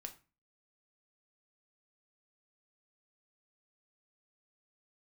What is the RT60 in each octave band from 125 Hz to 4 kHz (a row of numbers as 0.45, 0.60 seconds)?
0.45, 0.45, 0.30, 0.35, 0.30, 0.25 seconds